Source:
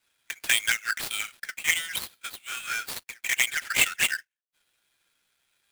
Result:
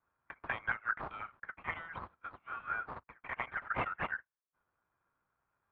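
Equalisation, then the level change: dynamic EQ 710 Hz, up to +4 dB, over -44 dBFS, Q 1.3; ladder low-pass 1300 Hz, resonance 55%; bell 81 Hz +8.5 dB 2.3 oct; +4.5 dB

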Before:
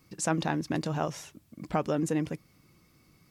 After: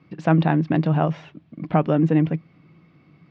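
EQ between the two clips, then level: speaker cabinet 100–3200 Hz, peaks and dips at 160 Hz +10 dB, 300 Hz +4 dB, 690 Hz +4 dB; +6.0 dB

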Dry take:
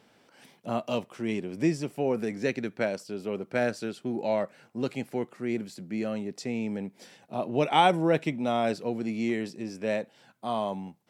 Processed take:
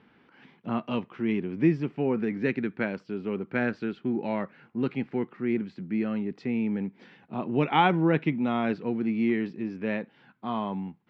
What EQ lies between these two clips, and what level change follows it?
Bessel low-pass 2000 Hz, order 4; bell 110 Hz -5.5 dB 0.36 oct; bell 610 Hz -13 dB 0.81 oct; +5.5 dB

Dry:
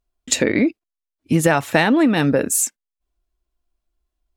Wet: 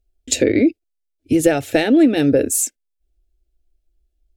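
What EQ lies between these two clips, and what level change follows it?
low shelf 360 Hz +10.5 dB; fixed phaser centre 430 Hz, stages 4; notch 1900 Hz, Q 21; 0.0 dB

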